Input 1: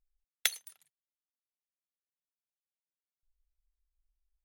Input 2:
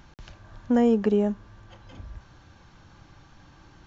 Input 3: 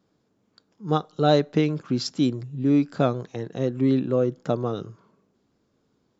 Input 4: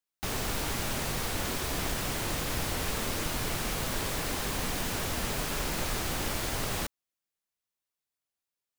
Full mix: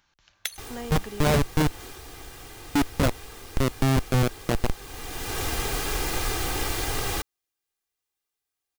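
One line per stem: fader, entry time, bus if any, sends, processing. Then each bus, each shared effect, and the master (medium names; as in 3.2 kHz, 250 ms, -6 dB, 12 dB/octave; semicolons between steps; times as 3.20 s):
-5.0 dB, 0.00 s, no send, none
-16.5 dB, 0.00 s, no send, tilt shelf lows -9 dB, about 830 Hz
+1.0 dB, 0.00 s, muted 1.72–2.75 s, no send, hum notches 60/120/180/240/300/360/420/480 Hz; Schmitt trigger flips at -19 dBFS
-3.0 dB, 0.35 s, no send, comb 2.5 ms, depth 61%; auto duck -15 dB, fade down 0.90 s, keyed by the third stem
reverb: none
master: level rider gain up to 5.5 dB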